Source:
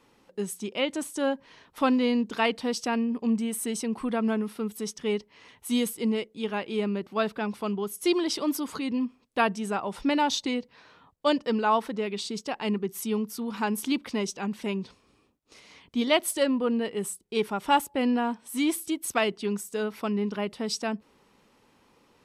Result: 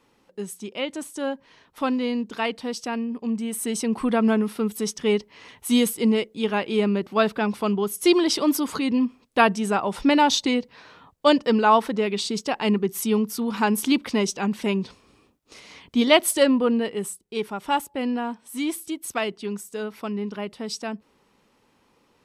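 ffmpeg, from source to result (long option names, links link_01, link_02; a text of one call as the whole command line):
ffmpeg -i in.wav -af "volume=6.5dB,afade=type=in:start_time=3.34:duration=0.67:silence=0.421697,afade=type=out:start_time=16.49:duration=0.76:silence=0.421697" out.wav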